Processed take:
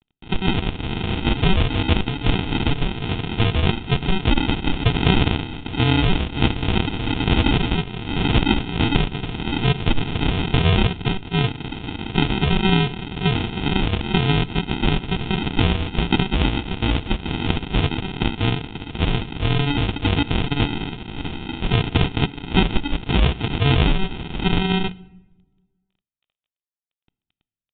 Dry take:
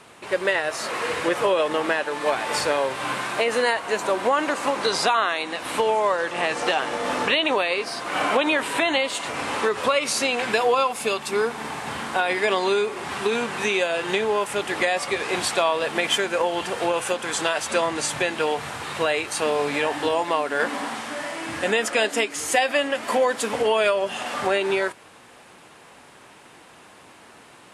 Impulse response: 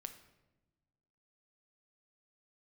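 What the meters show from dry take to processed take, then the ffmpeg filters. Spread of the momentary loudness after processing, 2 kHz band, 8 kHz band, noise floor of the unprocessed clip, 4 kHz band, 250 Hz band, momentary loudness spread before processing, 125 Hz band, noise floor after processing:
7 LU, −3.0 dB, below −40 dB, −49 dBFS, +3.0 dB, +9.5 dB, 6 LU, +23.5 dB, below −85 dBFS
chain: -filter_complex "[0:a]adynamicsmooth=sensitivity=6.5:basefreq=2500,aresample=16000,acrusher=samples=28:mix=1:aa=0.000001,aresample=44100,aeval=exprs='sgn(val(0))*max(abs(val(0))-0.00841,0)':channel_layout=same,aexciter=amount=4.2:drive=4.1:freq=2500,asplit=2[link_01][link_02];[1:a]atrim=start_sample=2205[link_03];[link_02][link_03]afir=irnorm=-1:irlink=0,volume=-4dB[link_04];[link_01][link_04]amix=inputs=2:normalize=0,aresample=8000,aresample=44100,volume=1.5dB"

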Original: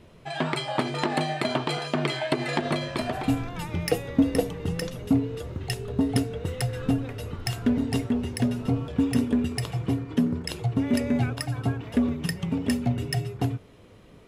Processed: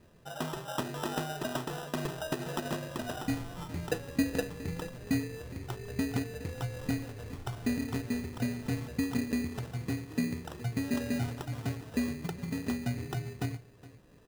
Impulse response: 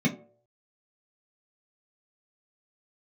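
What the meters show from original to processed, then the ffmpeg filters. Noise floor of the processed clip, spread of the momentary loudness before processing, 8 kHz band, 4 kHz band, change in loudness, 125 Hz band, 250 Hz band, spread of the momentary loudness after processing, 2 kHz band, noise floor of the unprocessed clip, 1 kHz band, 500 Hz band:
−55 dBFS, 6 LU, −5.0 dB, −9.5 dB, −8.0 dB, −8.0 dB, −8.0 dB, 8 LU, −6.5 dB, −51 dBFS, −8.5 dB, −8.5 dB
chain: -filter_complex "[0:a]asuperstop=centerf=3400:order=20:qfactor=1.2,acrusher=samples=20:mix=1:aa=0.000001,asplit=2[link_01][link_02];[link_02]aecho=0:1:415:0.119[link_03];[link_01][link_03]amix=inputs=2:normalize=0,volume=-8dB"

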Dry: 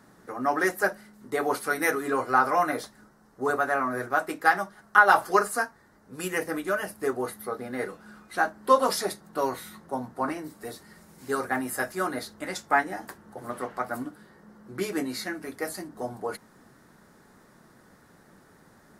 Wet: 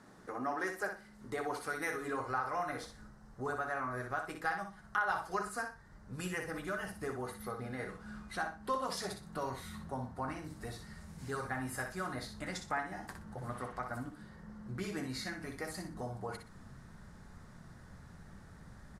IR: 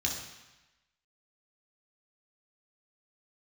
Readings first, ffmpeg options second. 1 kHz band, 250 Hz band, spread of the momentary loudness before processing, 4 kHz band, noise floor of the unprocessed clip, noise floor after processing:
−12.5 dB, −9.5 dB, 17 LU, −8.5 dB, −58 dBFS, −56 dBFS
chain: -filter_complex "[0:a]lowpass=9100,asubboost=boost=8.5:cutoff=110,acompressor=threshold=-39dB:ratio=2,asplit=2[link_01][link_02];[link_02]aecho=0:1:61|122|183:0.447|0.112|0.0279[link_03];[link_01][link_03]amix=inputs=2:normalize=0,volume=-2.5dB"

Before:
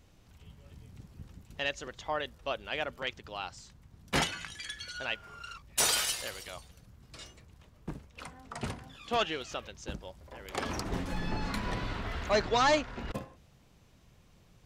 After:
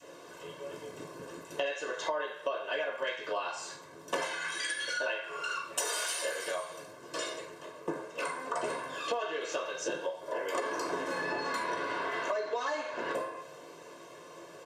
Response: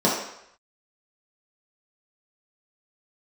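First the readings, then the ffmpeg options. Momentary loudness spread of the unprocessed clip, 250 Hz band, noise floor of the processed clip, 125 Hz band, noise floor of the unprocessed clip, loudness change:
22 LU, −4.0 dB, −50 dBFS, −15.0 dB, −61 dBFS, −1.5 dB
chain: -filter_complex "[0:a]highpass=260,equalizer=frequency=4500:width_type=o:width=0.77:gain=3,aecho=1:1:1.9:0.68[link_01];[1:a]atrim=start_sample=2205,asetrate=70560,aresample=44100[link_02];[link_01][link_02]afir=irnorm=-1:irlink=0,adynamicequalizer=threshold=0.0501:dfrequency=470:dqfactor=0.81:tfrequency=470:tqfactor=0.81:attack=5:release=100:ratio=0.375:range=2.5:mode=cutabove:tftype=bell,acrossover=split=6900[link_03][link_04];[link_03]volume=-1.5dB,asoftclip=hard,volume=1.5dB[link_05];[link_05][link_04]amix=inputs=2:normalize=0,alimiter=limit=-7dB:level=0:latency=1:release=406,acompressor=threshold=-32dB:ratio=6"

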